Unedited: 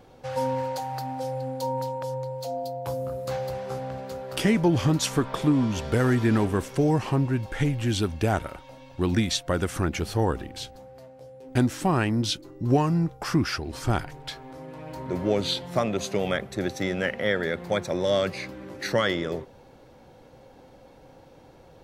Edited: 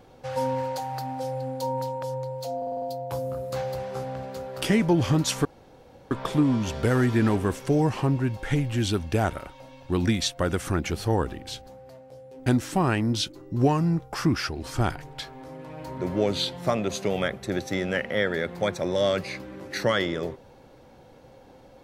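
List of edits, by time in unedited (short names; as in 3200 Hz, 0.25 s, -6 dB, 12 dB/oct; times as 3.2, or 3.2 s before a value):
2.57 stutter 0.05 s, 6 plays
5.2 insert room tone 0.66 s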